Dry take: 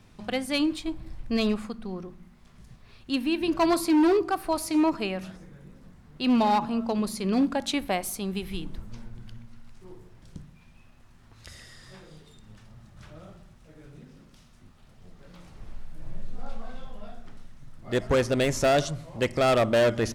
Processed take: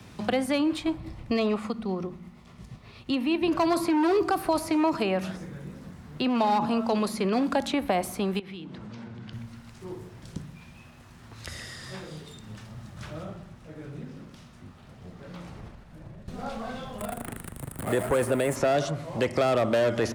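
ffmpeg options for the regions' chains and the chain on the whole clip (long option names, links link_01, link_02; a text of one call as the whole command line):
ffmpeg -i in.wav -filter_complex "[0:a]asettb=1/sr,asplit=3[link_01][link_02][link_03];[link_01]atrim=end=0.964[link_04];[link_02]atrim=start=0.96:end=3.48,asetpts=PTS-STARTPTS,afade=type=in:duration=0.004:curve=qsin,afade=type=out:start_time=2.516:duration=0.004:curve=qsin,highshelf=frequency=5100:gain=-7,bandreject=frequency=1600:width=6.5,tremolo=f=8.4:d=0.34[link_05];[link_03]atrim=start=3.476[link_06];[link_04][link_05]acrossfade=duration=0.004:curve1=hsin:curve2=qsin[link_07];[link_07][link_06]acrossfade=duration=0.004:curve1=qsin:curve2=hsin,asettb=1/sr,asplit=3[link_08][link_09][link_10];[link_08]atrim=end=8.394[link_11];[link_09]atrim=start=8.39:end=9.33,asetpts=PTS-STARTPTS,afade=type=in:duration=0.004:curve=qsin,afade=type=out:start_time=0.936:duration=0.004:curve=qsin,highpass=140,lowpass=4400,acompressor=threshold=-45dB:ratio=8:attack=3.2:release=140:knee=1:detection=peak[link_12];[link_10]atrim=start=9.326[link_13];[link_11][link_12]acrossfade=duration=0.004:curve1=hsin:curve2=qsin[link_14];[link_14][link_13]acrossfade=duration=0.004:curve1=qsin:curve2=hsin,asettb=1/sr,asplit=3[link_15][link_16][link_17];[link_15]atrim=end=13.234[link_18];[link_16]atrim=start=13.23:end=16.28,asetpts=PTS-STARTPTS,afade=type=in:duration=0.004:curve=qsin,afade=type=out:start_time=3.046:duration=0.004:curve=qsin,highshelf=frequency=3400:gain=-7.5,acompressor=threshold=-38dB:ratio=3:attack=3.2:release=140:knee=1:detection=peak[link_19];[link_17]atrim=start=16.276[link_20];[link_18][link_19]acrossfade=duration=0.004:curve1=hsin:curve2=qsin[link_21];[link_21][link_20]acrossfade=duration=0.004:curve1=qsin:curve2=hsin,asettb=1/sr,asplit=3[link_22][link_23][link_24];[link_22]atrim=end=16.984[link_25];[link_23]atrim=start=16.98:end=18.56,asetpts=PTS-STARTPTS,afade=type=in:duration=0.004:curve=qsin,afade=type=out:start_time=1.576:duration=0.004:curve=qsin,aeval=exprs='val(0)+0.5*0.015*sgn(val(0))':channel_layout=same,highshelf=frequency=7200:width_type=q:width=3:gain=9[link_26];[link_24]atrim=start=18.556[link_27];[link_25][link_26]acrossfade=duration=0.004:curve1=hsin:curve2=qsin[link_28];[link_28][link_27]acrossfade=duration=0.004:curve1=qsin:curve2=hsin,highpass=69,alimiter=limit=-20.5dB:level=0:latency=1:release=10,acrossover=split=220|450|1200|2600[link_29][link_30][link_31][link_32][link_33];[link_29]acompressor=threshold=-44dB:ratio=4[link_34];[link_30]acompressor=threshold=-41dB:ratio=4[link_35];[link_31]acompressor=threshold=-33dB:ratio=4[link_36];[link_32]acompressor=threshold=-47dB:ratio=4[link_37];[link_33]acompressor=threshold=-50dB:ratio=4[link_38];[link_34][link_35][link_36][link_37][link_38]amix=inputs=5:normalize=0,volume=9dB" out.wav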